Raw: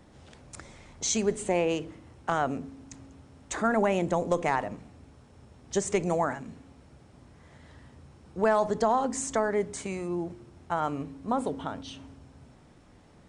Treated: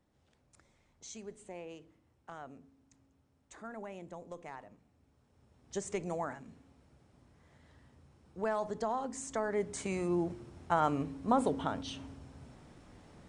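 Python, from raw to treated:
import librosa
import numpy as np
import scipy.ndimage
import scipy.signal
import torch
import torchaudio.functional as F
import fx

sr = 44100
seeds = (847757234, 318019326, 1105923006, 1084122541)

y = fx.gain(x, sr, db=fx.line((4.81, -20.0), (5.78, -10.0), (9.23, -10.0), (10.03, 0.0)))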